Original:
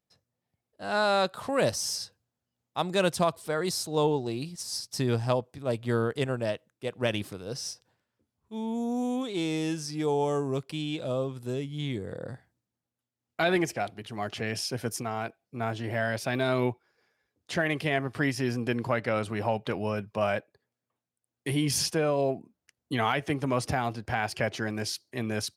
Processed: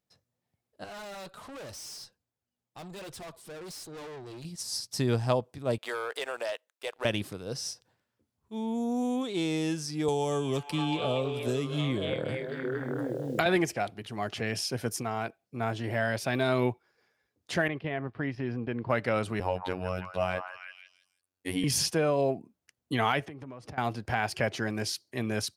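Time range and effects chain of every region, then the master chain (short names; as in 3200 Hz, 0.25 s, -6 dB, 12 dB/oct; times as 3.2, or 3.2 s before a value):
0.84–4.45 flange 1.3 Hz, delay 1.9 ms, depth 5 ms, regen -32% + tube stage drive 41 dB, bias 0.35
5.78–7.05 Bessel high-pass 730 Hz, order 4 + sample leveller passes 2 + compressor 3:1, threshold -31 dBFS
10.08–13.46 delay with a stepping band-pass 0.233 s, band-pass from 2800 Hz, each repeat -0.7 oct, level 0 dB + three-band squash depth 100%
17.68–18.9 gate -36 dBFS, range -9 dB + compressor 1.5:1, threshold -33 dBFS + air absorption 340 m
19.4–21.64 robotiser 91.6 Hz + delay with a stepping band-pass 0.163 s, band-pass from 1200 Hz, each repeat 0.7 oct, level -3.5 dB
23.25–23.78 LPF 2000 Hz 6 dB/oct + compressor 12:1, threshold -39 dBFS
whole clip: dry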